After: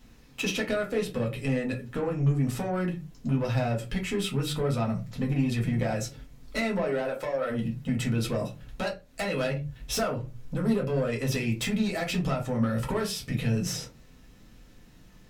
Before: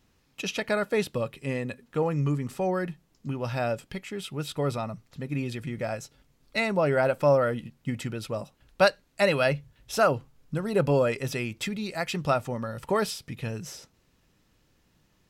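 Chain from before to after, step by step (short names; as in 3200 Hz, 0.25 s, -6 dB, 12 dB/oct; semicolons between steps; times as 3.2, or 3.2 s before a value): 6.57–7.49 HPF 180 Hz -> 390 Hz 12 dB/oct; compressor 12:1, threshold -32 dBFS, peak gain reduction 17.5 dB; soft clip -32.5 dBFS, distortion -13 dB; reverb RT60 0.25 s, pre-delay 4 ms, DRR -1 dB; gain +5.5 dB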